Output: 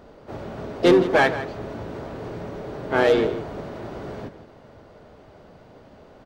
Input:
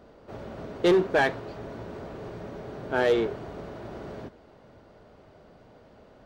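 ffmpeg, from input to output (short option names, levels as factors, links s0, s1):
-filter_complex "[0:a]asplit=2[s0][s1];[s1]adelay=163.3,volume=0.224,highshelf=f=4000:g=-3.67[s2];[s0][s2]amix=inputs=2:normalize=0,asplit=3[s3][s4][s5];[s4]asetrate=33038,aresample=44100,atempo=1.33484,volume=0.316[s6];[s5]asetrate=58866,aresample=44100,atempo=0.749154,volume=0.224[s7];[s3][s6][s7]amix=inputs=3:normalize=0,volume=1.68"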